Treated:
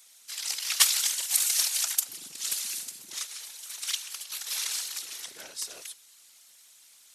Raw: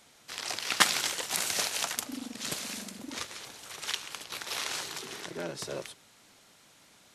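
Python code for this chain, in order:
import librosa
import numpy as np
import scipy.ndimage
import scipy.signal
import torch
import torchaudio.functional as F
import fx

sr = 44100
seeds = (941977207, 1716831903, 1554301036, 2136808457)

y = fx.whisperise(x, sr, seeds[0])
y = scipy.signal.lfilter([1.0, -0.97], [1.0], y)
y = F.gain(torch.from_numpy(y), 7.0).numpy()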